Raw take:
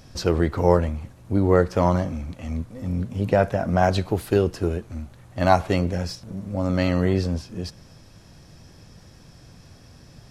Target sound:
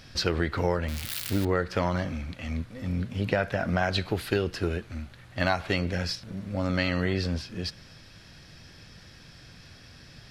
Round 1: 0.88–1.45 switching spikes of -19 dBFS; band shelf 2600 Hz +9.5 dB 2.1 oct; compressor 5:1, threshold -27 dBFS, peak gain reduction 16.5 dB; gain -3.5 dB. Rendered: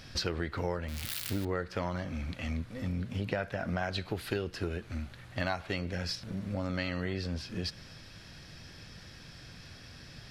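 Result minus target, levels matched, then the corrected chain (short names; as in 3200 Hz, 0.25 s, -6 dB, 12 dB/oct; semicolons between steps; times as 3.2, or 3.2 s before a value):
compressor: peak gain reduction +7.5 dB
0.88–1.45 switching spikes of -19 dBFS; band shelf 2600 Hz +9.5 dB 2.1 oct; compressor 5:1, threshold -17.5 dBFS, peak gain reduction 8.5 dB; gain -3.5 dB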